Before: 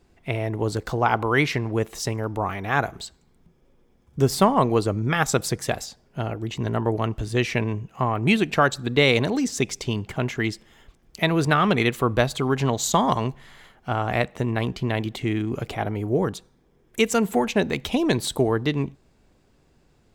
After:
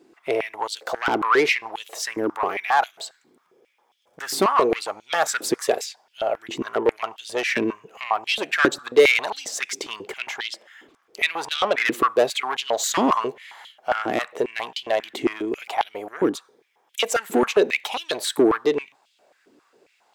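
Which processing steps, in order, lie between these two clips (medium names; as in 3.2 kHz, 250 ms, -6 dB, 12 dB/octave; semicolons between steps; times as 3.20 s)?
10.36–11.86 s: treble shelf 5.3 kHz -5 dB; saturation -18.5 dBFS, distortion -10 dB; step-sequenced high-pass 7.4 Hz 310–3200 Hz; trim +2 dB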